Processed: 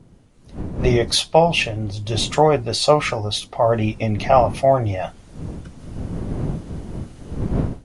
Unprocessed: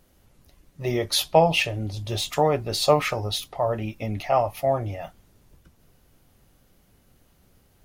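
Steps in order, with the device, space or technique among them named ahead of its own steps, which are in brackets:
smartphone video outdoors (wind on the microphone 200 Hz −39 dBFS; automatic gain control gain up to 16 dB; level −1 dB; AAC 96 kbit/s 22,050 Hz)

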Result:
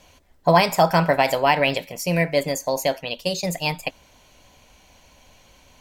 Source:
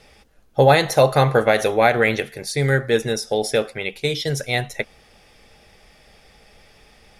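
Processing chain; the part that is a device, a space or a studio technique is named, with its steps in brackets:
nightcore (speed change +24%)
level −2 dB

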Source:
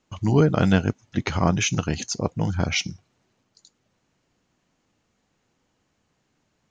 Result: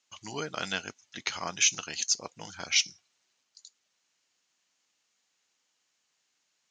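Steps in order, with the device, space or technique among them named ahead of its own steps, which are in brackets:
piezo pickup straight into a mixer (low-pass filter 6,500 Hz 12 dB per octave; first difference)
level +7 dB

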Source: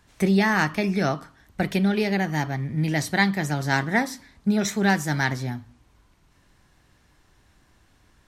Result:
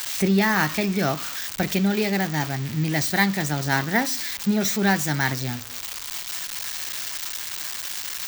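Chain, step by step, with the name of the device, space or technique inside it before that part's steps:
budget class-D amplifier (gap after every zero crossing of 0.055 ms; spike at every zero crossing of −15.5 dBFS)

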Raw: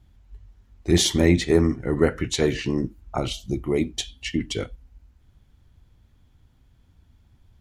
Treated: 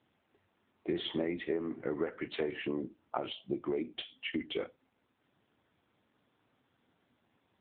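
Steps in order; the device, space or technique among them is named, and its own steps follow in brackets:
voicemail (band-pass filter 340–2,700 Hz; downward compressor 8 to 1, threshold −30 dBFS, peak gain reduction 15 dB; AMR narrowband 7.95 kbit/s 8,000 Hz)

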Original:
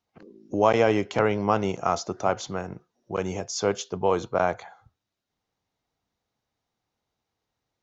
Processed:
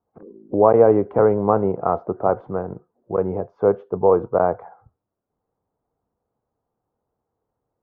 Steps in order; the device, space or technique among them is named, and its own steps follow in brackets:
under water (low-pass filter 1,200 Hz 24 dB per octave; parametric band 460 Hz +5.5 dB 0.56 octaves)
level +4 dB

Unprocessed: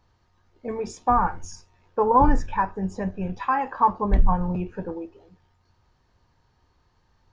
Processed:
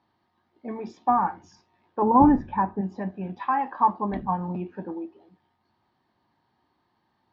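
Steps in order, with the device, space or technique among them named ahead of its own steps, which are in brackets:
0:02.02–0:02.81: spectral tilt −3.5 dB per octave
kitchen radio (loudspeaker in its box 200–4,100 Hz, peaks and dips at 220 Hz +4 dB, 320 Hz +4 dB, 480 Hz −9 dB, 780 Hz +3 dB, 1,400 Hz −5 dB, 2,600 Hz −5 dB)
level −1.5 dB

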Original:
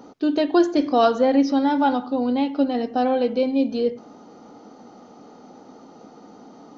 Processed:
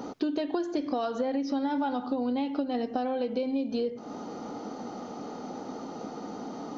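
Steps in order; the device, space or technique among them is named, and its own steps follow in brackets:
serial compression, leveller first (downward compressor 3 to 1, threshold −20 dBFS, peak gain reduction 6.5 dB; downward compressor 6 to 1, threshold −34 dBFS, peak gain reduction 15 dB)
level +6.5 dB

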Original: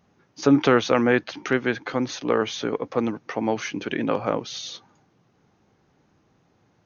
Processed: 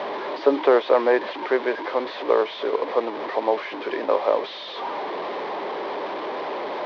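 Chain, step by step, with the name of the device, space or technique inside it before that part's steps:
digital answering machine (band-pass filter 330–3,100 Hz; linear delta modulator 32 kbit/s, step −25.5 dBFS; loudspeaker in its box 350–3,600 Hz, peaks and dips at 400 Hz +7 dB, 590 Hz +8 dB, 990 Hz +8 dB, 1,400 Hz −6 dB, 2,700 Hz −6 dB)

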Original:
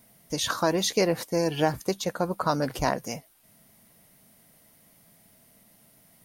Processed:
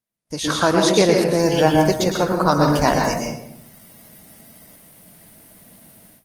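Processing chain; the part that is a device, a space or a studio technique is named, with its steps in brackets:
speakerphone in a meeting room (convolution reverb RT60 0.75 s, pre-delay 109 ms, DRR 1.5 dB; automatic gain control gain up to 9 dB; noise gate −51 dBFS, range −31 dB; level +1 dB; Opus 20 kbit/s 48,000 Hz)

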